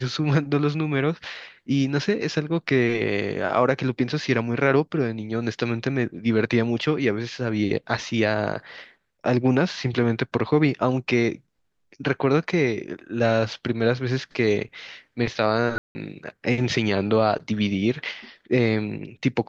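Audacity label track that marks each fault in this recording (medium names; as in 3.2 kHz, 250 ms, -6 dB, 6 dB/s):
15.780000	15.950000	dropout 170 ms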